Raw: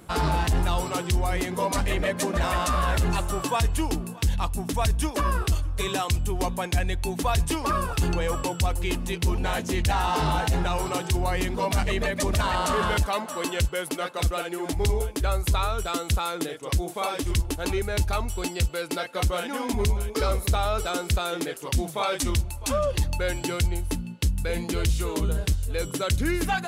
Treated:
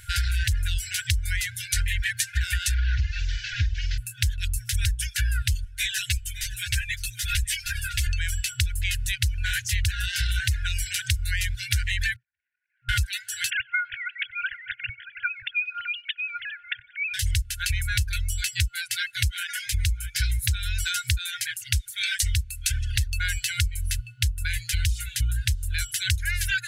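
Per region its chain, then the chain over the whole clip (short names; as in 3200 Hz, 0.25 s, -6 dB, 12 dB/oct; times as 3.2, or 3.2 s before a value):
2.74–3.98 delta modulation 32 kbps, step -39 dBFS + flutter echo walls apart 8.6 m, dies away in 0.42 s
5.65–8.07 comb 5.8 ms, depth 69% + echo 0.558 s -13.5 dB + ensemble effect
12.16–12.89 minimum comb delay 0.37 ms + Butterworth band-pass 800 Hz, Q 6.3 + compressor 2.5:1, threshold -46 dBFS
13.5–17.14 sine-wave speech + tape echo 94 ms, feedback 73%, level -15 dB, low-pass 2900 Hz
whole clip: reverb removal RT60 0.65 s; FFT band-reject 120–1400 Hz; compressor, threshold -29 dBFS; gain +8 dB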